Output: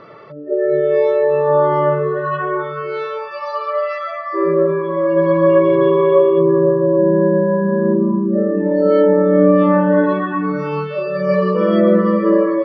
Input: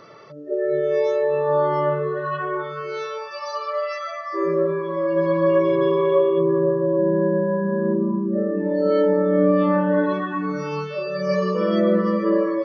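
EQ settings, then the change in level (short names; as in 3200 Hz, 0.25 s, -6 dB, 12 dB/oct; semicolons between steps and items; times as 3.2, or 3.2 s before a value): Bessel low-pass 2700 Hz, order 8; +6.0 dB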